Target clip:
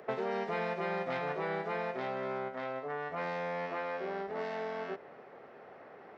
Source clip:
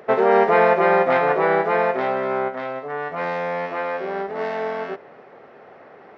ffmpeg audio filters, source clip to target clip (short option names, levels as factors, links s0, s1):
-filter_complex "[0:a]acrossover=split=180|3000[s0][s1][s2];[s1]acompressor=threshold=0.0447:ratio=6[s3];[s0][s3][s2]amix=inputs=3:normalize=0,volume=0.447"